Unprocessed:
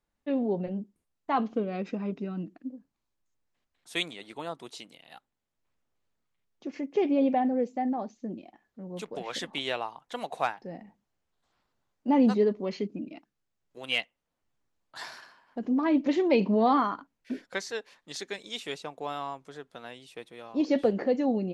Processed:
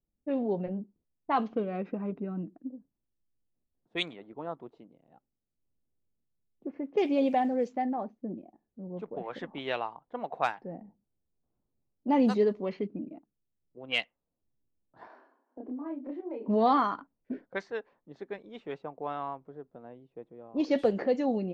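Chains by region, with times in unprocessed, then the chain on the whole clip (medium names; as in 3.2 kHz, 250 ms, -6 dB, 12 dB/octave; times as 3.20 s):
6.84–7.84 s: treble shelf 4.3 kHz +10.5 dB + crackle 330 per s -54 dBFS
15.07–16.48 s: steep high-pass 240 Hz 72 dB/octave + compression 8:1, threshold -37 dBFS + doubling 28 ms -2 dB
whole clip: dynamic bell 250 Hz, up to -3 dB, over -34 dBFS, Q 1.3; level-controlled noise filter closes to 360 Hz, open at -22.5 dBFS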